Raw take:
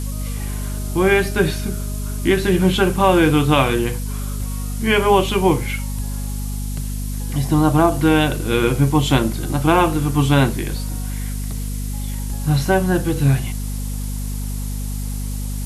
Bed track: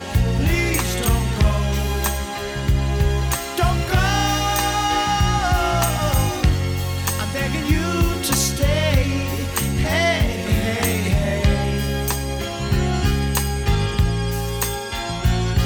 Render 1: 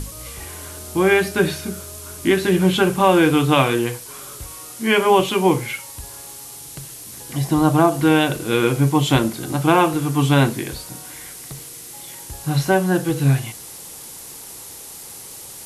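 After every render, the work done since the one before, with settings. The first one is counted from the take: hum notches 50/100/150/200/250 Hz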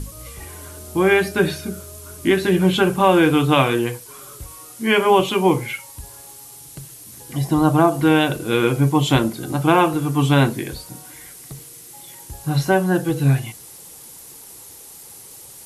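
noise reduction 6 dB, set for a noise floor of -37 dBFS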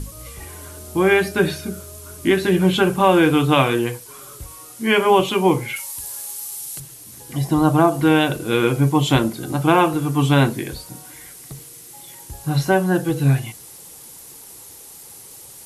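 5.76–6.80 s: tilt EQ +3 dB/octave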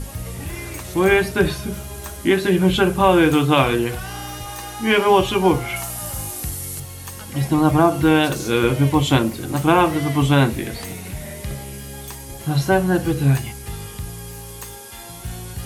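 add bed track -13 dB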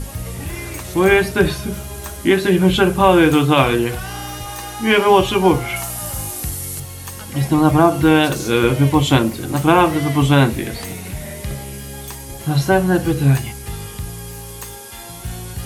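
trim +2.5 dB; peak limiter -1 dBFS, peak gain reduction 2 dB

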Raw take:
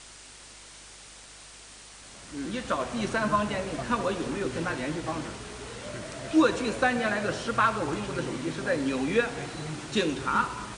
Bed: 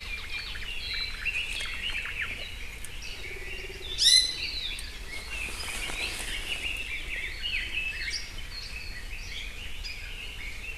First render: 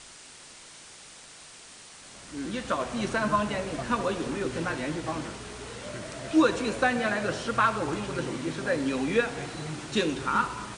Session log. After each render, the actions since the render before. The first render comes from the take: de-hum 50 Hz, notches 2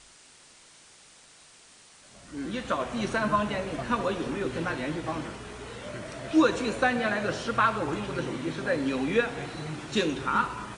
noise print and reduce 6 dB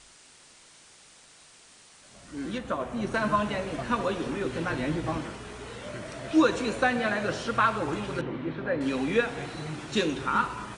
2.58–3.14 s: peaking EQ 4.3 kHz -8.5 dB 3 oct; 4.71–5.18 s: bass shelf 240 Hz +7 dB; 8.21–8.81 s: distance through air 380 m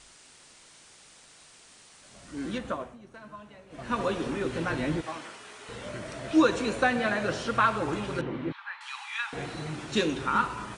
2.65–4.02 s: dip -20 dB, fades 0.33 s linear; 5.01–5.69 s: high-pass 1.1 kHz 6 dB/octave; 8.52–9.33 s: rippled Chebyshev high-pass 820 Hz, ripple 3 dB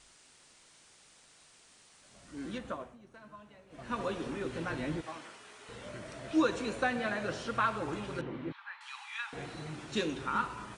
trim -6.5 dB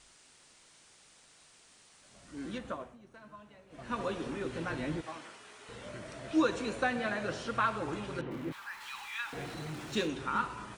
8.31–10.07 s: jump at every zero crossing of -48 dBFS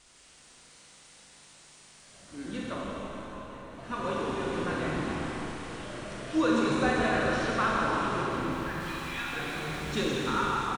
frequency-shifting echo 161 ms, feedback 62%, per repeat -86 Hz, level -8 dB; Schroeder reverb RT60 3.7 s, combs from 31 ms, DRR -3.5 dB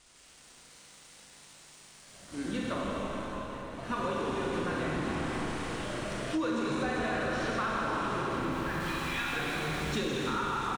waveshaping leveller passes 1; compression 6:1, threshold -29 dBFS, peak gain reduction 9.5 dB

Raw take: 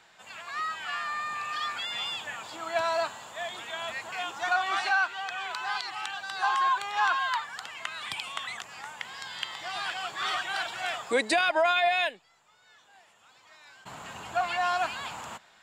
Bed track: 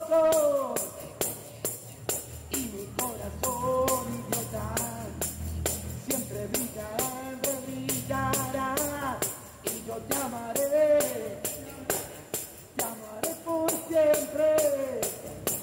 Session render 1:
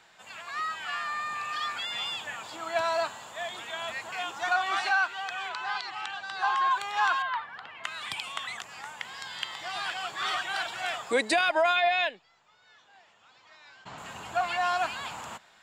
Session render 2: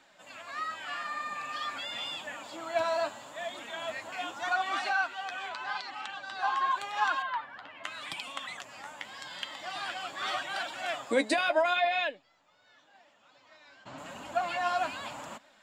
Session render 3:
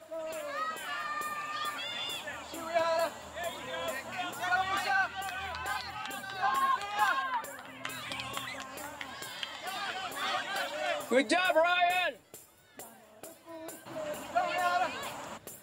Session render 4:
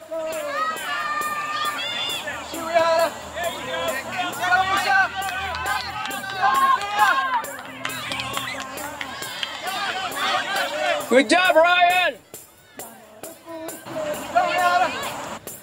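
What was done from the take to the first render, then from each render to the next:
5.49–6.71 s: distance through air 73 m; 7.22–7.84 s: distance through air 350 m; 11.76–13.98 s: low-pass 6.2 kHz 24 dB/octave
small resonant body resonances 280/570 Hz, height 12 dB, ringing for 50 ms; flange 0.84 Hz, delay 3.1 ms, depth 8.4 ms, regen +41%
add bed track -17 dB
trim +11 dB

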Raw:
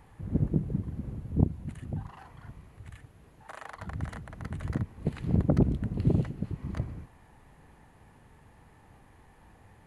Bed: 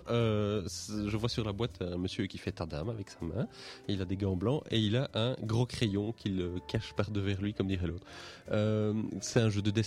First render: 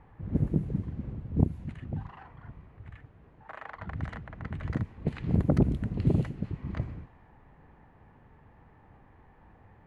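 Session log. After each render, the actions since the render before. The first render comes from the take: level-controlled noise filter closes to 1.9 kHz, open at -22 dBFS; dynamic bell 2.2 kHz, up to +3 dB, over -58 dBFS, Q 1.2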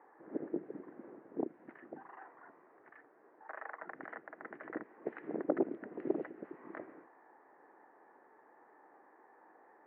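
elliptic band-pass 330–1800 Hz, stop band 60 dB; dynamic bell 1 kHz, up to -4 dB, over -55 dBFS, Q 1.8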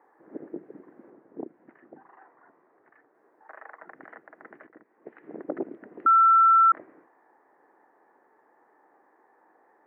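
1.10–3.15 s: distance through air 260 m; 4.67–5.54 s: fade in, from -15.5 dB; 6.06–6.72 s: bleep 1.34 kHz -14 dBFS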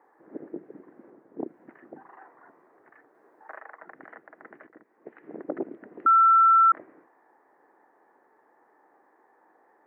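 1.40–3.59 s: gain +4 dB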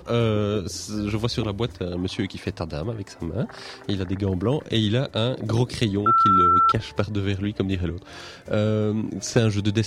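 add bed +8 dB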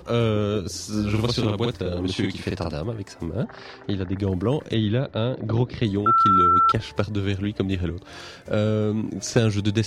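0.88–2.74 s: doubling 47 ms -2 dB; 3.44–4.17 s: distance through air 160 m; 4.74–5.85 s: distance through air 280 m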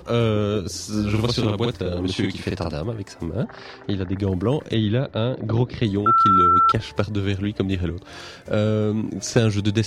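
trim +1.5 dB

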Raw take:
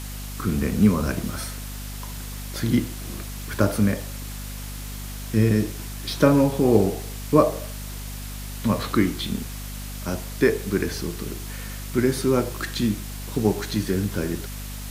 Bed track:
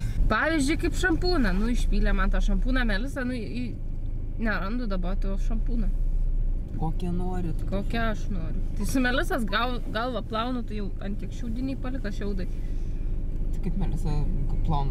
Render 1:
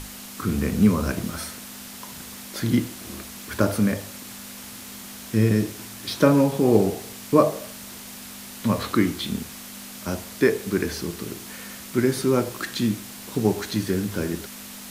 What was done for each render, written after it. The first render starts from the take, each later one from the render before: hum notches 50/100/150 Hz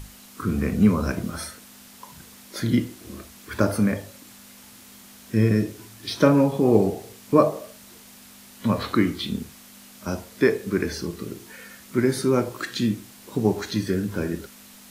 noise print and reduce 8 dB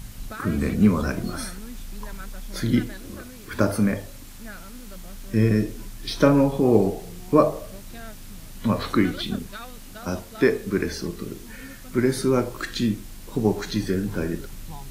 add bed track -13 dB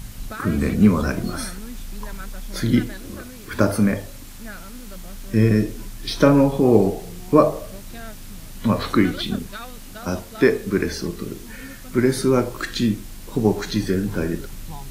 trim +3 dB; peak limiter -1 dBFS, peak gain reduction 1 dB

